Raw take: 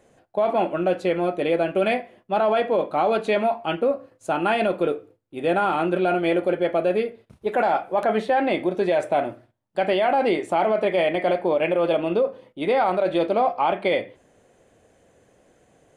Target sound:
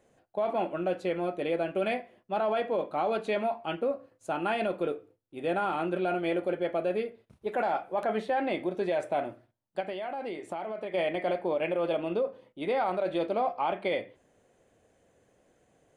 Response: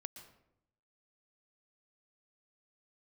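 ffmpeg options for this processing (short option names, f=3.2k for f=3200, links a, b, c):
-filter_complex "[0:a]asettb=1/sr,asplit=3[a][b][c];[a]atrim=end=9.804[d];[b]atrim=start=9.8:end=10.94,asetpts=PTS-STARTPTS,afade=t=in:d=0.004:c=qsin,afade=t=out:st=1.136:d=0.004:c=qsin,acompressor=threshold=-25dB:ratio=6[e];[c]atrim=start=10.936[f];[d][e]acrossfade=d=0.004:c1=hsin:c2=qsin[g];[g][f]acrossfade=d=0.004:c1=qsin:c2=hsin,volume=-8dB"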